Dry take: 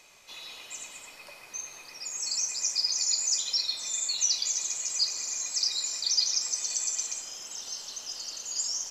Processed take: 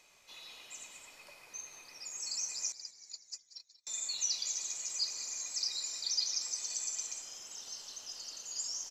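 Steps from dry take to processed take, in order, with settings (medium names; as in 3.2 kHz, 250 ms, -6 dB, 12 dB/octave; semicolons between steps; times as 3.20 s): 2.72–3.87 s: gate -23 dBFS, range -42 dB; frequency-shifting echo 186 ms, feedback 52%, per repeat -88 Hz, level -15 dB; trim -7.5 dB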